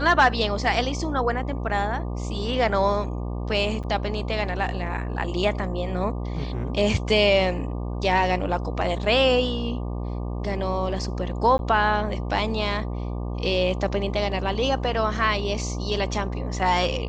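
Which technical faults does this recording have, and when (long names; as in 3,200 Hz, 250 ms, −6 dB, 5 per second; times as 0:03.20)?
mains buzz 60 Hz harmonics 20 −29 dBFS
0:03.83–0:03.84: drop-out 7.7 ms
0:11.58–0:11.59: drop-out 11 ms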